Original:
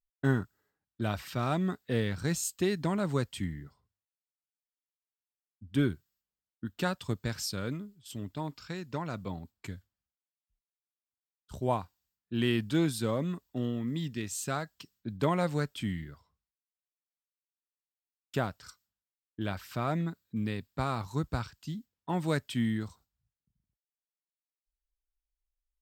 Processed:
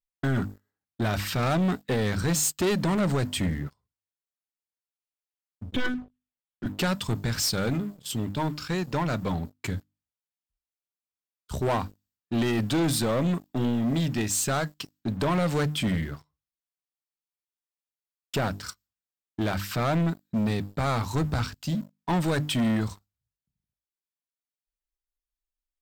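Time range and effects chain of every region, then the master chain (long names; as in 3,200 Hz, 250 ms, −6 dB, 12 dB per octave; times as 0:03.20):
0:05.74–0:06.66: parametric band 100 Hz −9 dB 2.2 octaves + mains-hum notches 50/100/150 Hz + one-pitch LPC vocoder at 8 kHz 250 Hz
whole clip: mains-hum notches 50/100/150/200/250/300 Hz; brickwall limiter −21 dBFS; leveller curve on the samples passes 3; level +1.5 dB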